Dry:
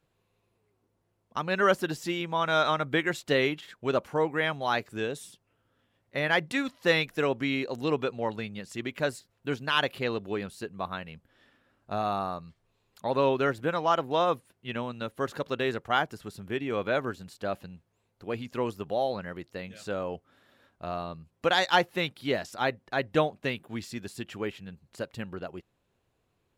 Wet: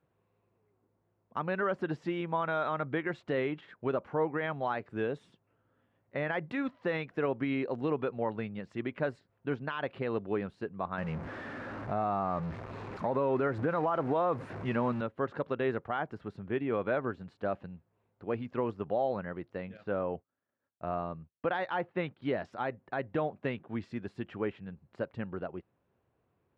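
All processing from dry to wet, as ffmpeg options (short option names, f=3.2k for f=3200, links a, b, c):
-filter_complex "[0:a]asettb=1/sr,asplit=3[a][b][c];[a]atrim=end=10.984[d];[b]atrim=start=10.98:end=15.01,asetpts=PTS-STARTPTS,afade=t=in:d=0.004:c=qsin,afade=t=out:st=4.026:d=0.004:c=qsin,aeval=exprs='val(0)+0.5*0.0119*sgn(val(0))':c=same,acontrast=33,equalizer=f=3.2k:t=o:w=0.61:g=-5[e];[c]atrim=start=15.006[f];[d][e]acrossfade=d=0.004:c1=hsin:c2=qsin[g];[g][f]acrossfade=d=0.004:c1=qsin:c2=hsin,asettb=1/sr,asplit=3[h][i][j];[h]atrim=end=19.774[k];[i]atrim=start=19.77:end=22.22,asetpts=PTS-STARTPTS,afade=t=in:d=0.004:c=qsin,afade=t=out:st=2.446:d=0.004:c=qsin,lowpass=3.6k,agate=range=-33dB:threshold=-50dB:ratio=3:release=100:detection=peak[l];[j]atrim=start=22.216[m];[k][l]acrossfade=d=0.004:c1=hsin:c2=qsin[n];[n][m]acrossfade=d=0.004:c1=qsin:c2=hsin,highpass=68,alimiter=limit=-20.5dB:level=0:latency=1:release=101,lowpass=1.7k"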